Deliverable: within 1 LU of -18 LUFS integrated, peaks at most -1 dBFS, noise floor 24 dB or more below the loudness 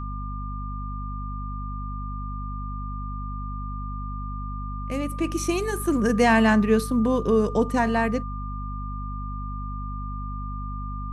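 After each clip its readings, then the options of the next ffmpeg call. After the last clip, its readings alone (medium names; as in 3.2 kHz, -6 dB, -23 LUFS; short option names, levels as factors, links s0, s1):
hum 50 Hz; highest harmonic 250 Hz; hum level -29 dBFS; steady tone 1.2 kHz; tone level -36 dBFS; loudness -26.5 LUFS; peak level -7.5 dBFS; loudness target -18.0 LUFS
-> -af "bandreject=f=50:t=h:w=6,bandreject=f=100:t=h:w=6,bandreject=f=150:t=h:w=6,bandreject=f=200:t=h:w=6,bandreject=f=250:t=h:w=6"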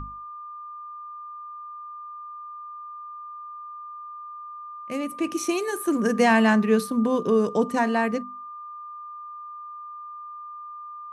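hum not found; steady tone 1.2 kHz; tone level -36 dBFS
-> -af "bandreject=f=1200:w=30"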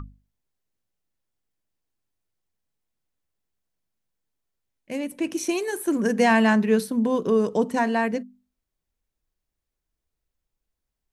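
steady tone not found; loudness -23.0 LUFS; peak level -8.0 dBFS; loudness target -18.0 LUFS
-> -af "volume=1.78"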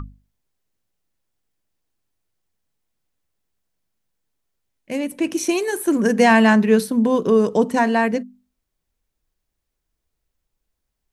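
loudness -18.0 LUFS; peak level -3.0 dBFS; noise floor -79 dBFS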